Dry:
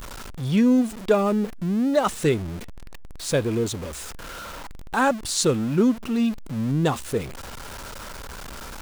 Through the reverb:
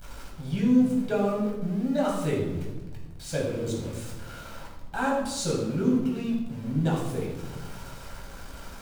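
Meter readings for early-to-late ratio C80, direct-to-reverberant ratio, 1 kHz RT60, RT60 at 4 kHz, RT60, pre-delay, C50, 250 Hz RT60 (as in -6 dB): 5.0 dB, -4.0 dB, 0.95 s, 0.75 s, 1.1 s, 7 ms, 3.0 dB, 1.8 s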